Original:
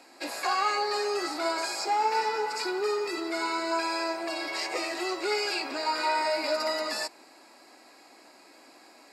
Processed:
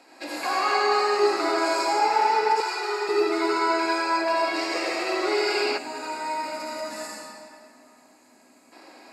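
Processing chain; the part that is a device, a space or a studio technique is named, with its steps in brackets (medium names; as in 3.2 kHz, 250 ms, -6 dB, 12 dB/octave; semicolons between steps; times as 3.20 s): swimming-pool hall (reverberation RT60 2.5 s, pre-delay 66 ms, DRR -5 dB; treble shelf 5.2 kHz -5 dB); 2.60–3.09 s: high-pass 660 Hz 12 dB/octave; 5.78–8.72 s: time-frequency box 300–5800 Hz -10 dB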